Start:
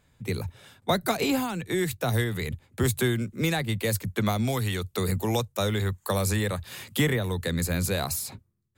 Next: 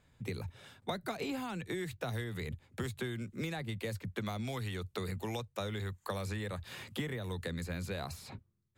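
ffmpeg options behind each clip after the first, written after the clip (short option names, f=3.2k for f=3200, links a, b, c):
-filter_complex "[0:a]highshelf=f=9.5k:g=-9,acrossover=split=1500|3900[a][b][c];[a]acompressor=threshold=-34dB:ratio=4[d];[b]acompressor=threshold=-44dB:ratio=4[e];[c]acompressor=threshold=-52dB:ratio=4[f];[d][e][f]amix=inputs=3:normalize=0,volume=-3dB"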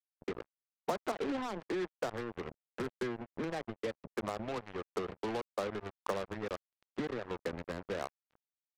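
-filter_complex "[0:a]adynamicsmooth=sensitivity=3.5:basefreq=650,acrossover=split=240 2200:gain=0.141 1 0.224[a][b][c];[a][b][c]amix=inputs=3:normalize=0,acrusher=bits=6:mix=0:aa=0.5,volume=5dB"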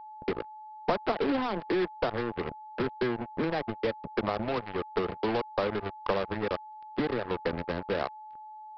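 -af "aeval=exprs='val(0)+0.00282*sin(2*PI*860*n/s)':c=same,aresample=11025,aeval=exprs='clip(val(0),-1,0.0251)':c=same,aresample=44100,volume=8dB"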